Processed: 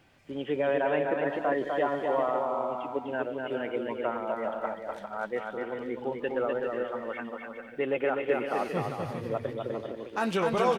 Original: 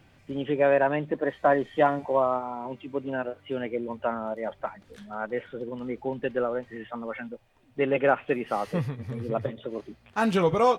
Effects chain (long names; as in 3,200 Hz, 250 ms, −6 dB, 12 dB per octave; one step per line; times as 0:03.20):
bass and treble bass −7 dB, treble 0 dB
brickwall limiter −17.5 dBFS, peak gain reduction 8.5 dB
bouncing-ball delay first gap 250 ms, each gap 0.6×, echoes 5
level −1.5 dB